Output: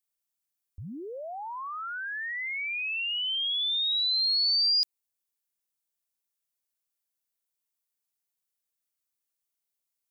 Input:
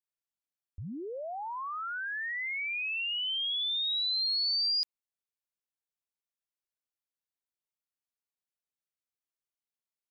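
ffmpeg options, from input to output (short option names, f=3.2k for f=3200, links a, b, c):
-af "highshelf=f=5.7k:g=12"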